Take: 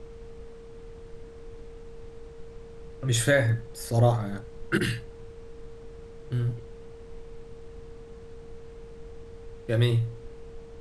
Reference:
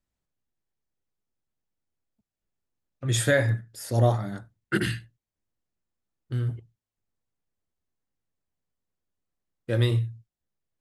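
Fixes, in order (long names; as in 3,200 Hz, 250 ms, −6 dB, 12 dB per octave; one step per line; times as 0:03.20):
notch filter 460 Hz, Q 30
noise reduction from a noise print 30 dB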